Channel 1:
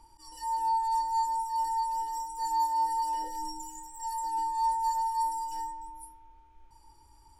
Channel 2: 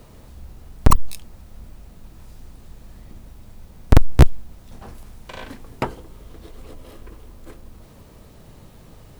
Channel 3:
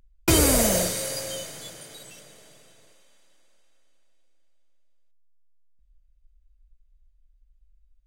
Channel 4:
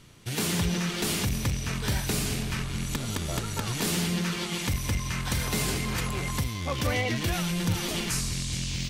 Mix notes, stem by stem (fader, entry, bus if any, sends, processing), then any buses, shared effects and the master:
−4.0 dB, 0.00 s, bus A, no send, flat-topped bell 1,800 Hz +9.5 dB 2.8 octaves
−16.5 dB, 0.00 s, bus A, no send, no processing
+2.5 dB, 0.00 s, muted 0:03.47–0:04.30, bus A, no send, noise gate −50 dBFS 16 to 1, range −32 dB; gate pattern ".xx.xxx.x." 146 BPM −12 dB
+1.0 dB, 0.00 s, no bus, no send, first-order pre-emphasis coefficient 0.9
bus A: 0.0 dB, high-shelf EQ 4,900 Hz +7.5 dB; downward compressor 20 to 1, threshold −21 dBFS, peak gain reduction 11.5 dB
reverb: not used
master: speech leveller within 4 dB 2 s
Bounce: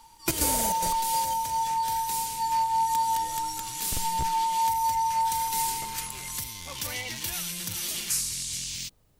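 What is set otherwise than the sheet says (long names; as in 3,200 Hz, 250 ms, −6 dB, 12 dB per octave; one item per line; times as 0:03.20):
stem 2 −16.5 dB → −24.5 dB
stem 3 +2.5 dB → −4.5 dB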